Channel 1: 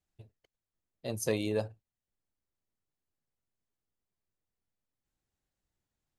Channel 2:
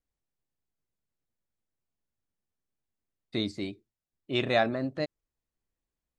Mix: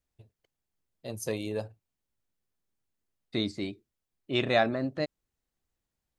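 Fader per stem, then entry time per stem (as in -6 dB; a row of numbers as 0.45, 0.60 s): -2.0, +0.5 dB; 0.00, 0.00 s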